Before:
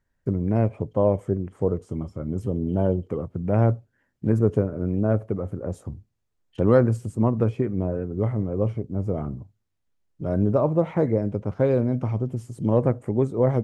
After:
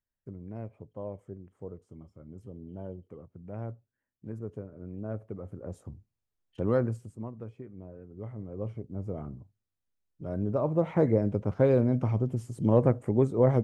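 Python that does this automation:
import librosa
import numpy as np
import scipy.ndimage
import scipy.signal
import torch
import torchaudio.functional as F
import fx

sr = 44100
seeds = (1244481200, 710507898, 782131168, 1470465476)

y = fx.gain(x, sr, db=fx.line((4.6, -18.5), (5.77, -9.0), (6.87, -9.0), (7.33, -20.0), (7.93, -20.0), (8.83, -9.5), (10.43, -9.5), (11.02, -2.0)))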